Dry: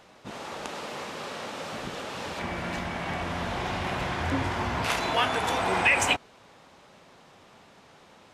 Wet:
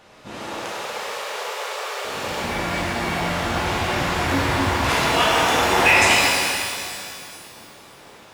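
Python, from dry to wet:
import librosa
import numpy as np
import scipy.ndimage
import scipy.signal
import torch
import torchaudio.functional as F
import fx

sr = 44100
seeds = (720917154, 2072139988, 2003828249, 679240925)

y = fx.cheby1_highpass(x, sr, hz=400.0, order=6, at=(0.57, 2.05))
y = fx.rev_shimmer(y, sr, seeds[0], rt60_s=2.3, semitones=12, shimmer_db=-8, drr_db=-5.5)
y = y * librosa.db_to_amplitude(1.5)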